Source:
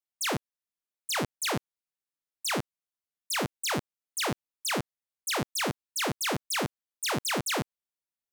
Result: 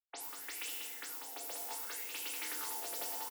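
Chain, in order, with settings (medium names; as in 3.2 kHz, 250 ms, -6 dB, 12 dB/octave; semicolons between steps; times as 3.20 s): delay that grows with frequency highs late, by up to 500 ms; pre-emphasis filter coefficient 0.9; gate -36 dBFS, range -11 dB; in parallel at +3 dB: compressor with a negative ratio -43 dBFS; on the sum: peak limiter -23 dBFS, peak gain reduction 6.5 dB; wide varispeed 2.52×; flange 1.6 Hz, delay 6.3 ms, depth 2 ms, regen +70%; on a send: delay 192 ms -4.5 dB; on the sum: FDN reverb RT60 3.3 s, high-frequency decay 0.6×, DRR -2 dB; sweeping bell 0.67 Hz 620–2800 Hz +13 dB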